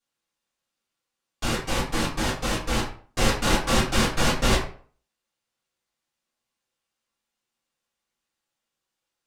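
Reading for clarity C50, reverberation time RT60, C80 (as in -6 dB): 6.5 dB, 0.45 s, 10.5 dB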